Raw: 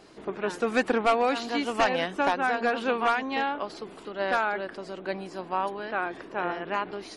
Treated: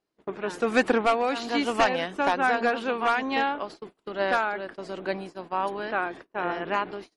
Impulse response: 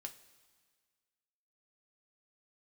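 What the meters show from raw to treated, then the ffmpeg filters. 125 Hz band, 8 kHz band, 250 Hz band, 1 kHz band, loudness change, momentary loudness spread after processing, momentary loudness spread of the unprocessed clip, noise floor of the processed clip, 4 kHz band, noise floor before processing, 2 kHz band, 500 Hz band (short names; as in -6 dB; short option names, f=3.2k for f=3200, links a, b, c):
+1.0 dB, +1.0 dB, +1.5 dB, +1.0 dB, +1.5 dB, 12 LU, 11 LU, -77 dBFS, +1.0 dB, -46 dBFS, +1.5 dB, +1.0 dB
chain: -af "tremolo=f=1.2:d=0.4,agate=range=-33dB:threshold=-42dB:ratio=16:detection=peak,volume=3dB"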